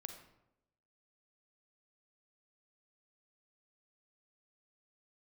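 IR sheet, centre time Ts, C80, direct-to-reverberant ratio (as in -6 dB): 21 ms, 9.5 dB, 6.0 dB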